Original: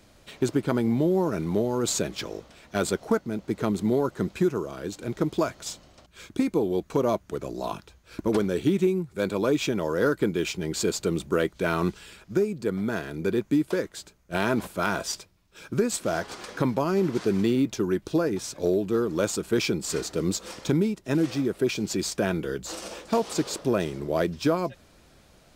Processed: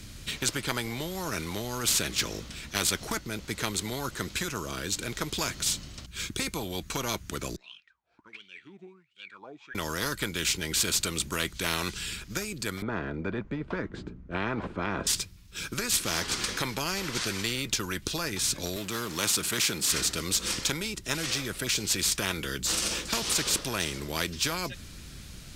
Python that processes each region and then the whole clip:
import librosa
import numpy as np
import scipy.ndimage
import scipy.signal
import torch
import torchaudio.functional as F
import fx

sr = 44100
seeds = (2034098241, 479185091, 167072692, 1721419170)

y = fx.chain(x, sr, fx.block_float(bits=7),
    fx.lowpass(hz=8200.0, slope=12),
    fx.wah_lfo(hz=1.4, low_hz=690.0, high_hz=3100.0, q=20.0), at=(7.56, 9.75))
y = fx.chain(y, sr, fx.lowpass(hz=1200.0, slope=12),
    fx.peak_eq(hz=250.0, db=14.5, octaves=2.1), at=(12.82, 15.07))
y = fx.chain(y, sr, fx.law_mismatch(coded='mu'),
    fx.highpass(hz=180.0, slope=12), at=(18.76, 19.91))
y = fx.tone_stack(y, sr, knobs='6-0-2')
y = fx.env_lowpass_down(y, sr, base_hz=2300.0, full_db=-20.0)
y = fx.spectral_comp(y, sr, ratio=4.0)
y = y * 10.0 ** (13.5 / 20.0)